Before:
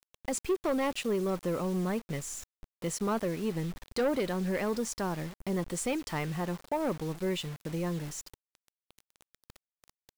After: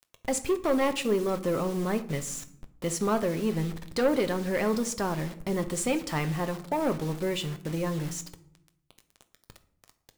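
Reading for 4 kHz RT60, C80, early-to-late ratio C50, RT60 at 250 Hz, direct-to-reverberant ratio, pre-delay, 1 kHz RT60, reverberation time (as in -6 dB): 0.40 s, 18.5 dB, 15.5 dB, 1.2 s, 8.5 dB, 7 ms, 0.60 s, 0.70 s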